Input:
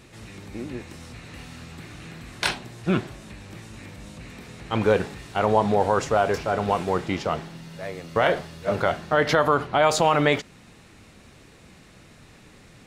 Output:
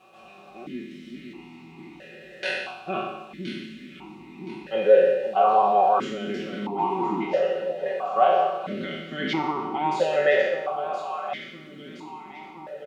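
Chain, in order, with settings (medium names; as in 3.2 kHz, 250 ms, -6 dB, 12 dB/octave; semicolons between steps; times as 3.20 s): spectral sustain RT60 0.98 s; band-stop 2.3 kHz, Q 10; comb 5.3 ms, depth 89%; in parallel at 0 dB: peak limiter -10 dBFS, peak gain reduction 7.5 dB; 6.67–7.86 s: on the sum: phase dispersion highs, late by 118 ms, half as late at 580 Hz; added noise violet -41 dBFS; on a send: echo whose repeats swap between lows and highs 510 ms, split 870 Hz, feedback 78%, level -8.5 dB; on the sum: stepped vowel filter 1.5 Hz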